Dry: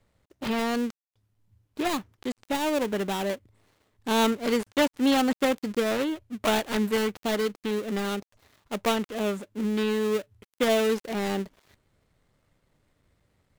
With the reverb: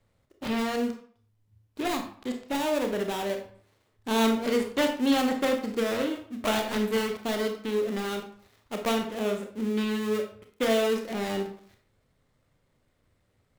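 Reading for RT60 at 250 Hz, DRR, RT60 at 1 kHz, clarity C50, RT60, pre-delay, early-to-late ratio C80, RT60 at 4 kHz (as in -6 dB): 0.50 s, 3.5 dB, 0.50 s, 7.0 dB, 0.50 s, 26 ms, 11.5 dB, 0.40 s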